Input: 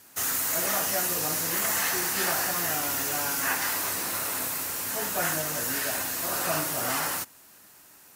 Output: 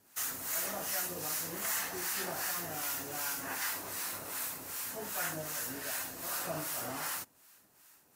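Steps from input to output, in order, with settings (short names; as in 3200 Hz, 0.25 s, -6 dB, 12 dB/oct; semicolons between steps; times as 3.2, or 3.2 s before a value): harmonic tremolo 2.6 Hz, depth 70%, crossover 830 Hz; gain -6 dB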